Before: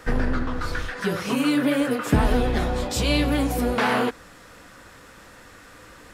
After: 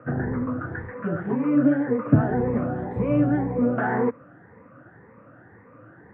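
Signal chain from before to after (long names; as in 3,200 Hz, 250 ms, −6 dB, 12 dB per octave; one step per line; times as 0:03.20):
rippled gain that drifts along the octave scale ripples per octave 0.9, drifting +1.9 Hz, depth 12 dB
elliptic band-pass filter 110–1,800 Hz, stop band 40 dB
spectral tilt −3 dB per octave
level −5 dB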